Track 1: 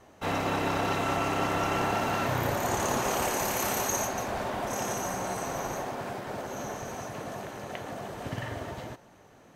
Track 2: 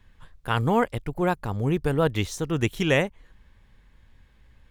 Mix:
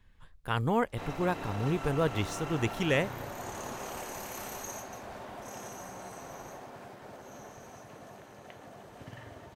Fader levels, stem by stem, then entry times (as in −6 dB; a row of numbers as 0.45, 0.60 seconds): −11.5, −6.0 decibels; 0.75, 0.00 seconds